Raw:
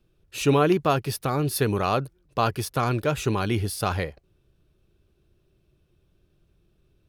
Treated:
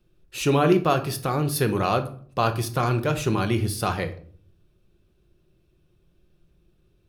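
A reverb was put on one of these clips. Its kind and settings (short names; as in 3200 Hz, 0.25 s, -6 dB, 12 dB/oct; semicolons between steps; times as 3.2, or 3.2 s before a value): shoebox room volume 520 m³, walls furnished, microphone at 0.92 m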